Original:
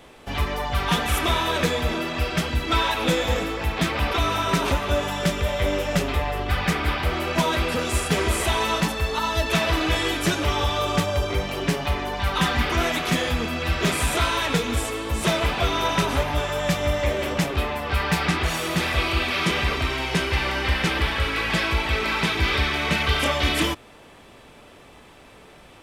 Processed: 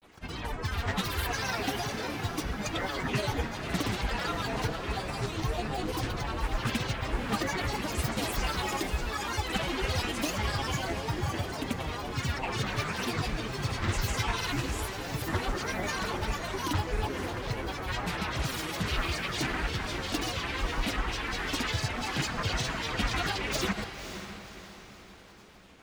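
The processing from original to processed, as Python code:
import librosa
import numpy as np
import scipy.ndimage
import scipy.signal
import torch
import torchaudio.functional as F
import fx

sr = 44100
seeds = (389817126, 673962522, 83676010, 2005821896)

y = fx.filter_lfo_notch(x, sr, shape='saw_down', hz=6.1, low_hz=480.0, high_hz=7300.0, q=2.6)
y = fx.granulator(y, sr, seeds[0], grain_ms=100.0, per_s=20.0, spray_ms=100.0, spread_st=12)
y = fx.peak_eq(y, sr, hz=580.0, db=-3.5, octaves=0.24)
y = fx.echo_diffused(y, sr, ms=539, feedback_pct=45, wet_db=-10.0)
y = y * 10.0 ** (-7.0 / 20.0)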